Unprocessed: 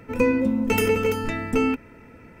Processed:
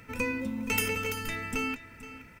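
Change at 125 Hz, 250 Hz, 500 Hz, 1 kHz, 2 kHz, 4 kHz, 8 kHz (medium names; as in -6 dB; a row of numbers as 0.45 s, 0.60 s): -8.5 dB, -12.0 dB, -14.5 dB, -8.0 dB, -2.5 dB, -1.5 dB, 0.0 dB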